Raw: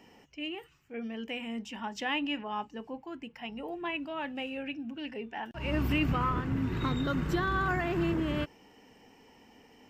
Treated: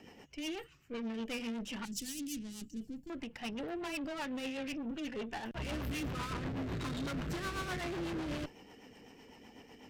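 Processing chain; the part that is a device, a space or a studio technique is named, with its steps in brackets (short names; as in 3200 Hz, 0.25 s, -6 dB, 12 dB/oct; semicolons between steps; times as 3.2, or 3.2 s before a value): overdriven rotary cabinet (tube stage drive 43 dB, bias 0.7; rotary speaker horn 8 Hz); 1.85–3.1 EQ curve 260 Hz 0 dB, 880 Hz -28 dB, 7300 Hz +8 dB; gain +8 dB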